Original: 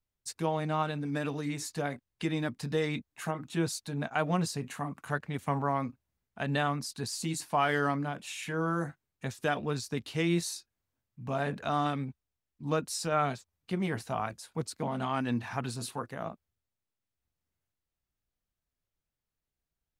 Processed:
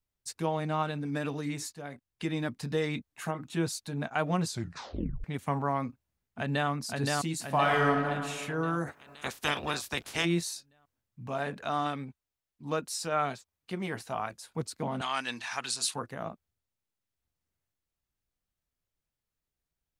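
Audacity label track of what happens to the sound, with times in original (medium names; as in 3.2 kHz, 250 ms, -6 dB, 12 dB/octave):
1.730000	2.560000	fade in equal-power, from -13.5 dB
4.460000	4.460000	tape stop 0.78 s
5.860000	6.690000	echo throw 520 ms, feedback 55%, level -1.5 dB
7.460000	8.080000	reverb throw, RT60 1.8 s, DRR 1 dB
8.860000	10.240000	spectral peaks clipped ceiling under each frame's peak by 23 dB
11.270000	14.420000	bass shelf 240 Hz -7.5 dB
15.010000	15.940000	frequency weighting ITU-R 468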